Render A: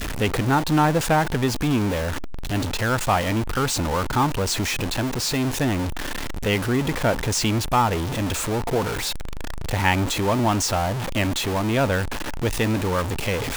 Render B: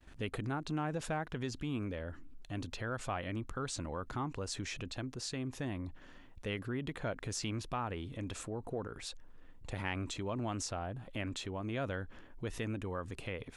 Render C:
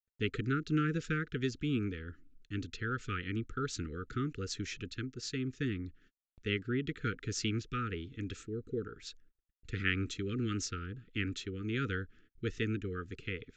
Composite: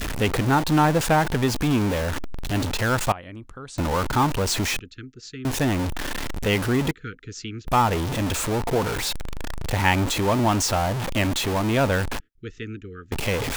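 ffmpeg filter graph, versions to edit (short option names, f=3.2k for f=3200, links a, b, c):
-filter_complex "[2:a]asplit=3[a][b][c];[0:a]asplit=5[d][e][f][g][h];[d]atrim=end=3.122[i];[1:a]atrim=start=3.118:end=3.782[j];[e]atrim=start=3.778:end=4.792[k];[a]atrim=start=4.788:end=5.452[l];[f]atrim=start=5.448:end=6.912[m];[b]atrim=start=6.908:end=7.672[n];[g]atrim=start=7.668:end=12.202[o];[c]atrim=start=12.198:end=13.122[p];[h]atrim=start=13.118[q];[i][j]acrossfade=d=0.004:c1=hsin:c2=hsin[r];[r][k]acrossfade=d=0.004:c1=hsin:c2=hsin[s];[s][l]acrossfade=d=0.004:c1=hsin:c2=hsin[t];[t][m]acrossfade=d=0.004:c1=hsin:c2=hsin[u];[u][n]acrossfade=d=0.004:c1=hsin:c2=hsin[v];[v][o]acrossfade=d=0.004:c1=hsin:c2=hsin[w];[w][p]acrossfade=d=0.004:c1=hsin:c2=hsin[x];[x][q]acrossfade=d=0.004:c1=hsin:c2=hsin"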